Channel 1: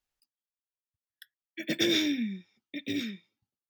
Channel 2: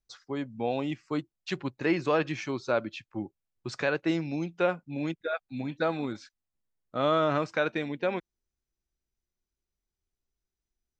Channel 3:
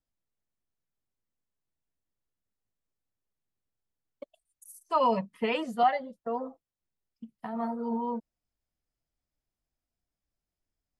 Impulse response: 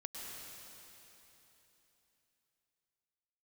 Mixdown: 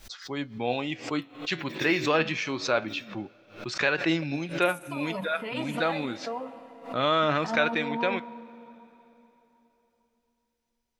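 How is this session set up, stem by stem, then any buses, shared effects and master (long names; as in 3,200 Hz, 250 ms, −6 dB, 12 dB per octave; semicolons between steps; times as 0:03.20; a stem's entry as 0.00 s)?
−13.5 dB, 0.00 s, no send, no processing
+3.0 dB, 0.00 s, send −21 dB, parametric band 2,900 Hz +9 dB 2.4 octaves; flanger 0.26 Hz, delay 4.8 ms, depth 9.1 ms, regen +75%
−3.0 dB, 0.00 s, send −4.5 dB, low-shelf EQ 470 Hz −6.5 dB; compressor whose output falls as the input rises −34 dBFS, ratio −1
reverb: on, RT60 3.4 s, pre-delay 97 ms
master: background raised ahead of every attack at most 130 dB per second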